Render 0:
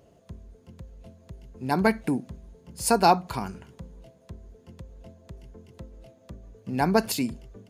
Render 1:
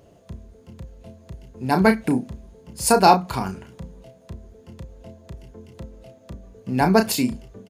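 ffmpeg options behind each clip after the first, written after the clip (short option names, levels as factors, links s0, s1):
-filter_complex "[0:a]asplit=2[s0][s1];[s1]adelay=32,volume=0.447[s2];[s0][s2]amix=inputs=2:normalize=0,volume=1.68"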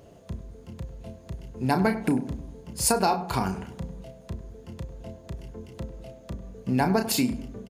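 -filter_complex "[0:a]acompressor=threshold=0.0891:ratio=8,asplit=2[s0][s1];[s1]adelay=99,lowpass=f=1300:p=1,volume=0.251,asplit=2[s2][s3];[s3]adelay=99,lowpass=f=1300:p=1,volume=0.52,asplit=2[s4][s5];[s5]adelay=99,lowpass=f=1300:p=1,volume=0.52,asplit=2[s6][s7];[s7]adelay=99,lowpass=f=1300:p=1,volume=0.52,asplit=2[s8][s9];[s9]adelay=99,lowpass=f=1300:p=1,volume=0.52[s10];[s0][s2][s4][s6][s8][s10]amix=inputs=6:normalize=0,volume=1.19"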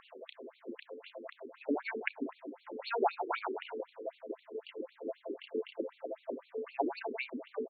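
-af "acompressor=threshold=0.0282:ratio=6,afftfilt=real='re*between(b*sr/1024,330*pow(3200/330,0.5+0.5*sin(2*PI*3.9*pts/sr))/1.41,330*pow(3200/330,0.5+0.5*sin(2*PI*3.9*pts/sr))*1.41)':imag='im*between(b*sr/1024,330*pow(3200/330,0.5+0.5*sin(2*PI*3.9*pts/sr))/1.41,330*pow(3200/330,0.5+0.5*sin(2*PI*3.9*pts/sr))*1.41)':win_size=1024:overlap=0.75,volume=3.16"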